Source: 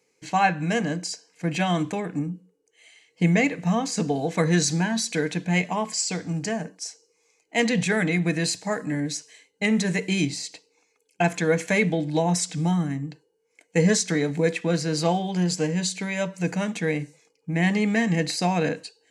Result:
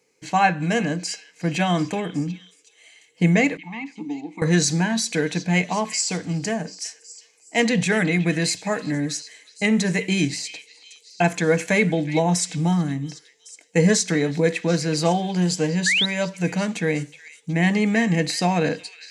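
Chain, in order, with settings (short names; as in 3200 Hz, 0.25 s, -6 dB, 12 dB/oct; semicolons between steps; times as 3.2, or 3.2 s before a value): 3.57–4.42 vowel filter u; delay with a stepping band-pass 0.369 s, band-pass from 2700 Hz, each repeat 0.7 oct, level -11.5 dB; 15.86–16.06 painted sound rise 1600–4100 Hz -22 dBFS; gain +2.5 dB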